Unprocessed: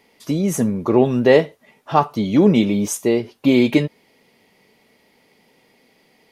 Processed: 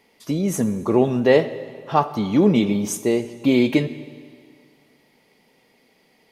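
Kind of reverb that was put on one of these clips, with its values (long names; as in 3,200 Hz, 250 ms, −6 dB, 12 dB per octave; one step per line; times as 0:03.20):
comb and all-pass reverb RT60 2 s, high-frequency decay 0.95×, pre-delay 20 ms, DRR 14 dB
level −2.5 dB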